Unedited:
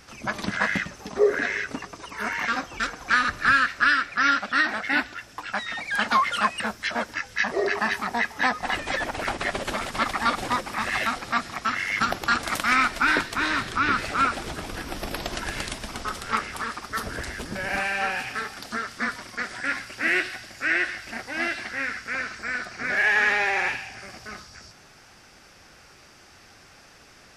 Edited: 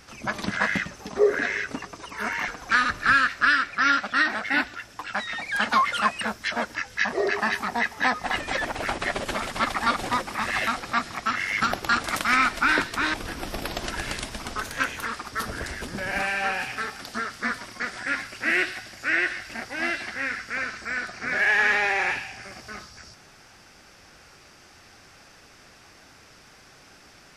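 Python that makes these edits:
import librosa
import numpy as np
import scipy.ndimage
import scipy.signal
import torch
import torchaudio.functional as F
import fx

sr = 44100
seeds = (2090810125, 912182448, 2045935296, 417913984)

y = fx.edit(x, sr, fx.cut(start_s=2.48, length_s=0.39),
    fx.cut(start_s=13.53, length_s=1.1),
    fx.speed_span(start_s=16.1, length_s=0.53, speed=1.19), tone=tone)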